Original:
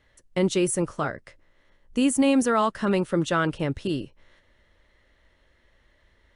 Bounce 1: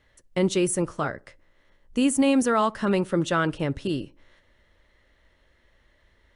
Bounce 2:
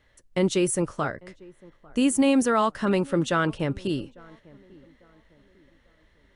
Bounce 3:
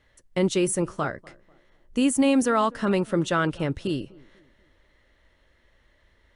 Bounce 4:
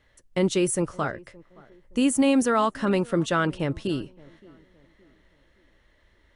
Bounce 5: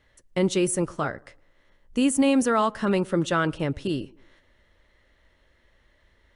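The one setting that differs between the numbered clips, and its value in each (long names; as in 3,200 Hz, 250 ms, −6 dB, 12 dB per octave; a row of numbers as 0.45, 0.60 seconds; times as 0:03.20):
tape delay, delay time: 63, 848, 245, 569, 110 milliseconds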